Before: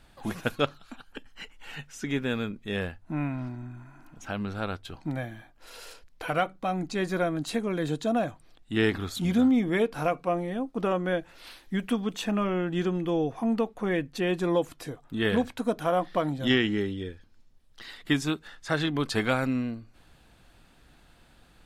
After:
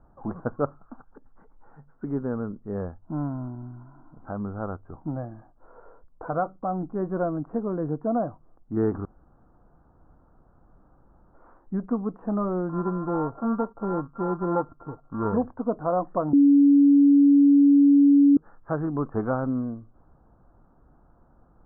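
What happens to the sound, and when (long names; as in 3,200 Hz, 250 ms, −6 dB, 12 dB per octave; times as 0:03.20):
0:01.07–0:02.01: downward compressor 2 to 1, threshold −48 dBFS
0:09.05–0:11.34: fill with room tone
0:12.69–0:15.34: samples sorted by size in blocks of 32 samples
0:16.33–0:18.37: beep over 283 Hz −13.5 dBFS
whole clip: Butterworth low-pass 1,300 Hz 48 dB per octave; level +1 dB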